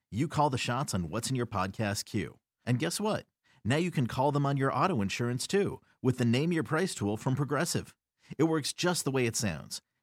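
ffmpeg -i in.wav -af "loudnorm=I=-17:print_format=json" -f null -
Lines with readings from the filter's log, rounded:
"input_i" : "-30.8",
"input_tp" : "-13.7",
"input_lra" : "2.4",
"input_thresh" : "-41.2",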